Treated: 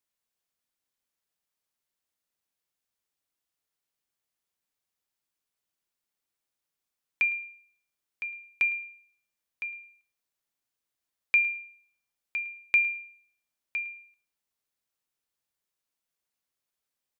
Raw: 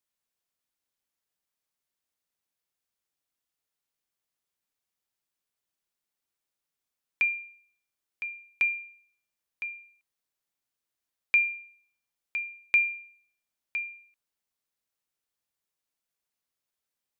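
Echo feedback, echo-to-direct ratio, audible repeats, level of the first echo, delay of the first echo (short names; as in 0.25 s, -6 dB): 19%, -20.0 dB, 2, -20.0 dB, 0.108 s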